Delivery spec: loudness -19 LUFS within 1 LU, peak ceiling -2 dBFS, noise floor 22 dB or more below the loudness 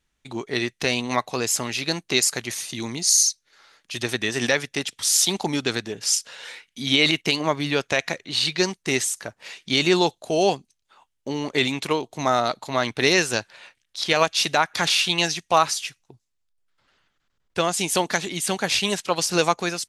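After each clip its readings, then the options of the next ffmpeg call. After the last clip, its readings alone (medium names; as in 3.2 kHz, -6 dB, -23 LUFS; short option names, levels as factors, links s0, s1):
loudness -22.0 LUFS; peak level -3.0 dBFS; loudness target -19.0 LUFS
-> -af "volume=1.41,alimiter=limit=0.794:level=0:latency=1"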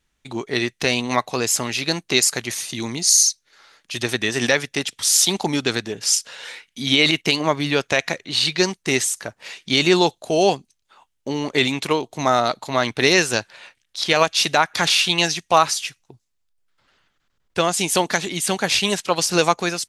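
loudness -19.5 LUFS; peak level -2.0 dBFS; noise floor -72 dBFS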